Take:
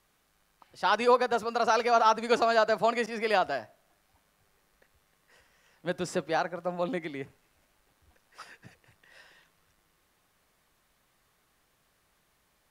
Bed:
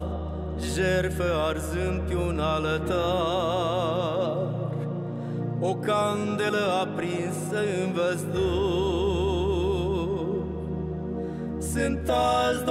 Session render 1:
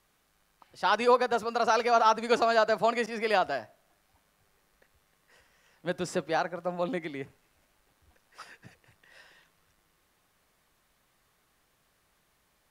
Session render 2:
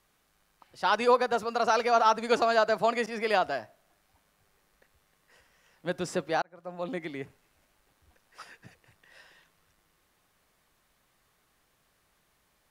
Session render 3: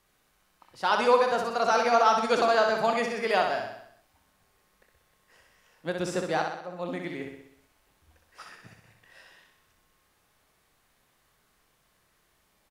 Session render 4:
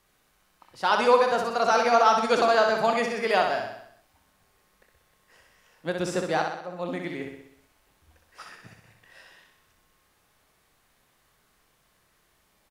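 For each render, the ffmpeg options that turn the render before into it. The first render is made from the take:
ffmpeg -i in.wav -af anull out.wav
ffmpeg -i in.wav -filter_complex "[0:a]asplit=2[link_01][link_02];[link_01]atrim=end=6.42,asetpts=PTS-STARTPTS,afade=type=out:start_time=6.416:duration=0.004:curve=hsin[link_03];[link_02]atrim=start=6.42,asetpts=PTS-STARTPTS,afade=type=in:duration=0.67[link_04];[link_03][link_04]concat=n=2:v=0:a=1" out.wav
ffmpeg -i in.wav -filter_complex "[0:a]asplit=2[link_01][link_02];[link_02]adelay=26,volume=-13dB[link_03];[link_01][link_03]amix=inputs=2:normalize=0,aecho=1:1:63|126|189|252|315|378|441:0.562|0.315|0.176|0.0988|0.0553|0.031|0.0173" out.wav
ffmpeg -i in.wav -af "volume=2dB" out.wav

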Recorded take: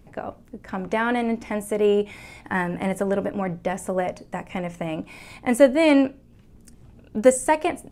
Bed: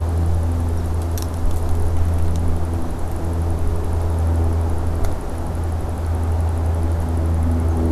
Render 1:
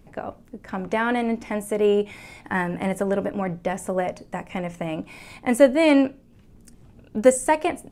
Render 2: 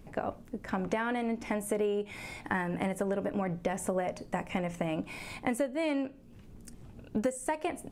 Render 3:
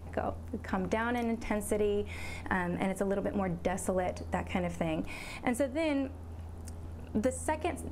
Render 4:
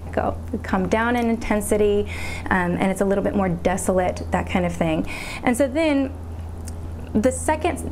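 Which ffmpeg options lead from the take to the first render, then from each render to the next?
ffmpeg -i in.wav -af "bandreject=frequency=60:width_type=h:width=4,bandreject=frequency=120:width_type=h:width=4" out.wav
ffmpeg -i in.wav -af "acompressor=threshold=-27dB:ratio=16" out.wav
ffmpeg -i in.wav -i bed.wav -filter_complex "[1:a]volume=-25dB[link_01];[0:a][link_01]amix=inputs=2:normalize=0" out.wav
ffmpeg -i in.wav -af "volume=11.5dB" out.wav

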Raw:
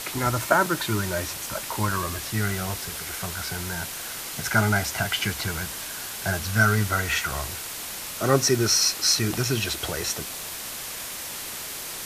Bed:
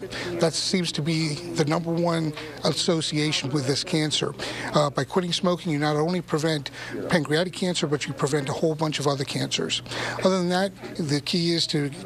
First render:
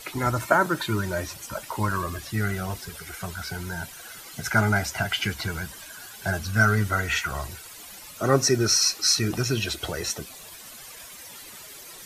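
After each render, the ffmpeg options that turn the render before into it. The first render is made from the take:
ffmpeg -i in.wav -af "afftdn=noise_reduction=13:noise_floor=-35" out.wav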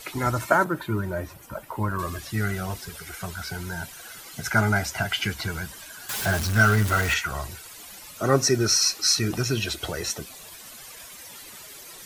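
ffmpeg -i in.wav -filter_complex "[0:a]asettb=1/sr,asplit=3[link_01][link_02][link_03];[link_01]atrim=end=0.644[link_04];[link_02]atrim=start=0.64:end=1.99,asetpts=PTS-STARTPTS,afade=type=in:duration=0.004:curve=qsin,afade=type=out:start_time=1.346:duration=0.004:curve=qsin,equalizer=frequency=5700:width=0.45:gain=-14.5[link_05];[link_03]atrim=start=1.986[link_06];[link_04][link_05]acrossfade=duration=0.004:curve1=hsin:curve2=qsin[link_07];[link_07][link_06]acrossfade=duration=0.004:curve1=qsin:curve2=hsin,asettb=1/sr,asplit=3[link_08][link_09][link_10];[link_08]atrim=end=6.094[link_11];[link_09]atrim=start=6.09:end=7.14,asetpts=PTS-STARTPTS,afade=type=in:duration=0.004:curve=qsin,afade=type=out:start_time=1.046:duration=0.004:curve=qsin,aeval=exprs='val(0)+0.5*0.0531*sgn(val(0))':channel_layout=same[link_12];[link_10]atrim=start=7.136[link_13];[link_11][link_12]acrossfade=duration=0.004:curve1=hsin:curve2=qsin[link_14];[link_14][link_13]acrossfade=duration=0.004:curve1=qsin:curve2=hsin" out.wav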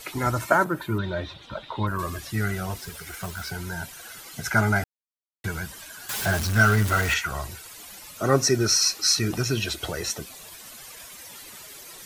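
ffmpeg -i in.wav -filter_complex "[0:a]asettb=1/sr,asplit=3[link_01][link_02][link_03];[link_01]atrim=end=0.984[link_04];[link_02]atrim=start=0.98:end=1.87,asetpts=PTS-STARTPTS,afade=type=in:duration=0.004:curve=qsin,afade=type=out:start_time=0.886:duration=0.004:curve=qsin,lowpass=frequency=3700:width_type=q:width=13[link_05];[link_03]atrim=start=1.866[link_06];[link_04][link_05]acrossfade=duration=0.004:curve1=hsin:curve2=qsin[link_07];[link_07][link_06]acrossfade=duration=0.004:curve1=qsin:curve2=hsin,asettb=1/sr,asplit=3[link_08][link_09][link_10];[link_08]atrim=end=2.764[link_11];[link_09]atrim=start=2.76:end=3.51,asetpts=PTS-STARTPTS,afade=type=in:duration=0.004:curve=qsin,afade=type=out:start_time=0.746:duration=0.004:curve=qsin,acrusher=bits=3:mode=log:mix=0:aa=0.000001[link_12];[link_10]atrim=start=3.506[link_13];[link_11][link_12]acrossfade=duration=0.004:curve1=hsin:curve2=qsin[link_14];[link_14][link_13]acrossfade=duration=0.004:curve1=qsin:curve2=hsin,asplit=3[link_15][link_16][link_17];[link_15]atrim=end=4.84,asetpts=PTS-STARTPTS,afade=type=out:start_time=4.836:duration=0.004:curve=hsin[link_18];[link_16]atrim=start=4.84:end=5.44,asetpts=PTS-STARTPTS,volume=0[link_19];[link_17]atrim=start=5.44,asetpts=PTS-STARTPTS,afade=type=in:duration=0.004:curve=hsin[link_20];[link_18][link_19][link_20]concat=n=3:v=0:a=1" out.wav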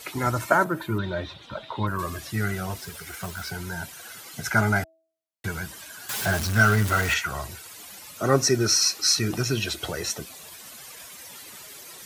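ffmpeg -i in.wav -af "highpass=71,bandreject=frequency=324.2:width_type=h:width=4,bandreject=frequency=648.4:width_type=h:width=4" out.wav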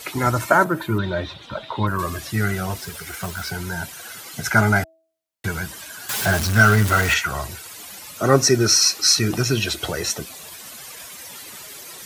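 ffmpeg -i in.wav -af "volume=5dB,alimiter=limit=-1dB:level=0:latency=1" out.wav

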